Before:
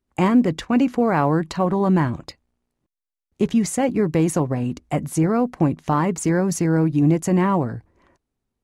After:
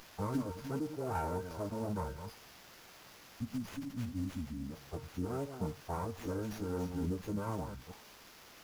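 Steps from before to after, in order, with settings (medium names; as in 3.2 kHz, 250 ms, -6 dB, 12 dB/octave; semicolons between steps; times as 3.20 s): chunks repeated in reverse 176 ms, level -9 dB; gate -29 dBFS, range -27 dB; spectral selection erased 2.45–4.68 s, 500–4500 Hz; feedback comb 820 Hz, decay 0.28 s, mix 90%; added noise blue -50 dBFS; formant-preserving pitch shift -10 st; brick-wall FIR band-stop 1.6–4.4 kHz; sliding maximum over 5 samples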